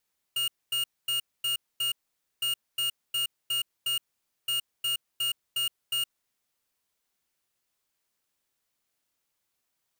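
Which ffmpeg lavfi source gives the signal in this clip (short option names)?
-f lavfi -i "aevalsrc='0.0398*(2*lt(mod(2850*t,1),0.5)-1)*clip(min(mod(mod(t,2.06),0.36),0.12-mod(mod(t,2.06),0.36))/0.005,0,1)*lt(mod(t,2.06),1.8)':d=6.18:s=44100"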